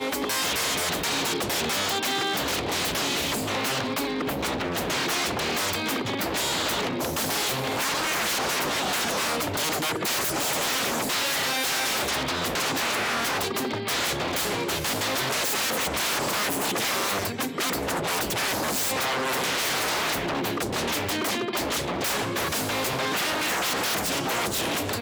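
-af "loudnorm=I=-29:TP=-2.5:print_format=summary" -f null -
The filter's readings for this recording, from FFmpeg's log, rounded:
Input Integrated:    -25.2 LUFS
Input True Peak:     -15.0 dBTP
Input LRA:             1.5 LU
Input Threshold:     -35.2 LUFS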